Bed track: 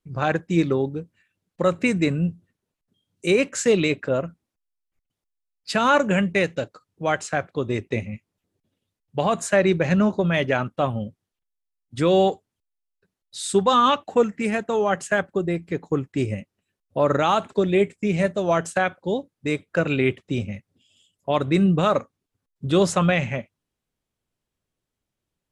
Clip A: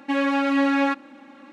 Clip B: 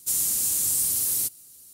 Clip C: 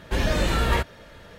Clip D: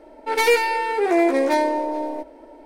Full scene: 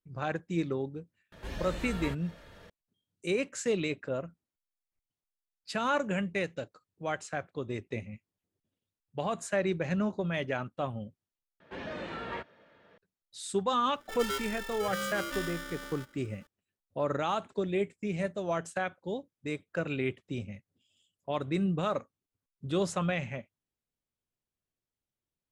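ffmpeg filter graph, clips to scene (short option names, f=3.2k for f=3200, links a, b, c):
-filter_complex "[3:a]asplit=2[a][b];[0:a]volume=-11dB[c];[a]acompressor=mode=upward:threshold=-26dB:ratio=2.5:attack=3.2:release=140:knee=2.83:detection=peak[d];[b]highpass=190,lowpass=2.8k[e];[4:a]aeval=exprs='val(0)*sgn(sin(2*PI*880*n/s))':c=same[f];[c]asplit=2[g][h];[g]atrim=end=11.604[i];[e]atrim=end=1.38,asetpts=PTS-STARTPTS,volume=-12.5dB[j];[h]atrim=start=12.976[k];[d]atrim=end=1.38,asetpts=PTS-STARTPTS,volume=-16dB,afade=t=in:d=0.004:c=hsin,afade=t=out:st=1.376:d=0.004:c=hsin,adelay=1320[l];[f]atrim=end=2.65,asetpts=PTS-STARTPTS,volume=-18dB,afade=t=in:d=0.004:c=hsin,afade=t=out:st=2.646:d=0.004:c=hsin,adelay=13820[m];[i][j]acrossfade=d=0.004:c1=hsin:c2=hsin[n];[n][k]acrossfade=d=0.004:c1=hsin:c2=hsin[o];[o][l][m]amix=inputs=3:normalize=0"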